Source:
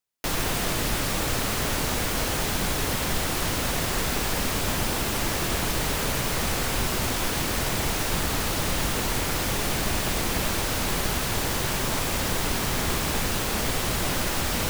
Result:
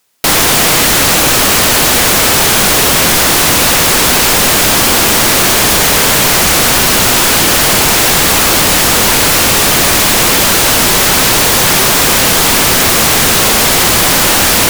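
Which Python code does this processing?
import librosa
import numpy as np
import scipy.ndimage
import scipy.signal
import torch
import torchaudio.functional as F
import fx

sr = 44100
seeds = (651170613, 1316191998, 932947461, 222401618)

p1 = fx.low_shelf(x, sr, hz=110.0, db=-11.5)
p2 = fx.fold_sine(p1, sr, drive_db=20, ceiling_db=-9.0)
p3 = p1 + F.gain(torch.from_numpy(p2), -2.0).numpy()
y = F.gain(torch.from_numpy(p3), 4.5).numpy()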